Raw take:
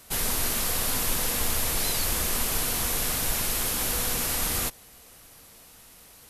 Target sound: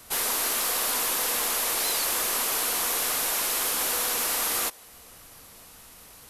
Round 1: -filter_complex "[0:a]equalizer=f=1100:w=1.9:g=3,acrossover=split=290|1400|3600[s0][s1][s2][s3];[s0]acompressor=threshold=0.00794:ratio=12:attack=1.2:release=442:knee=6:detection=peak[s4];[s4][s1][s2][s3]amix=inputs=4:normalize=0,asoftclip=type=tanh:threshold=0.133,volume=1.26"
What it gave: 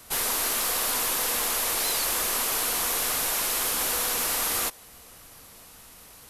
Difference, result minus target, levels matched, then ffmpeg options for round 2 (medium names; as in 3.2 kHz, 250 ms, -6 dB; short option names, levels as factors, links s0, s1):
compression: peak gain reduction -7 dB
-filter_complex "[0:a]equalizer=f=1100:w=1.9:g=3,acrossover=split=290|1400|3600[s0][s1][s2][s3];[s0]acompressor=threshold=0.00335:ratio=12:attack=1.2:release=442:knee=6:detection=peak[s4];[s4][s1][s2][s3]amix=inputs=4:normalize=0,asoftclip=type=tanh:threshold=0.133,volume=1.26"